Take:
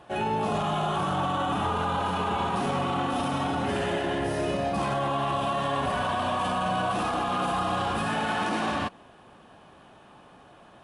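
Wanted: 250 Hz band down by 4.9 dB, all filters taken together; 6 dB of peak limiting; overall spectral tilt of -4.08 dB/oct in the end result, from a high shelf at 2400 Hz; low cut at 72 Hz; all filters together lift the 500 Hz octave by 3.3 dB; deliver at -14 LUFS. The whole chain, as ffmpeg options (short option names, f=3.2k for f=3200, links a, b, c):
-af "highpass=72,equalizer=f=250:t=o:g=-9,equalizer=f=500:t=o:g=7,highshelf=f=2.4k:g=-8,volume=16dB,alimiter=limit=-5.5dB:level=0:latency=1"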